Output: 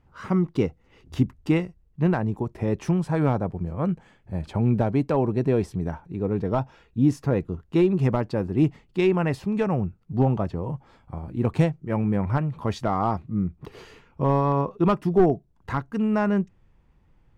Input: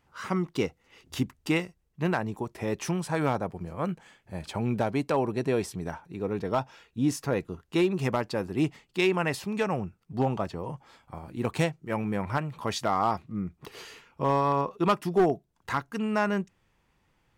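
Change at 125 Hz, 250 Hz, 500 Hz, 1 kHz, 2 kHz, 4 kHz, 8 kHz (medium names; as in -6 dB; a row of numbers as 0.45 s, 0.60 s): +8.5 dB, +6.0 dB, +3.5 dB, +0.5 dB, -2.5 dB, -5.5 dB, no reading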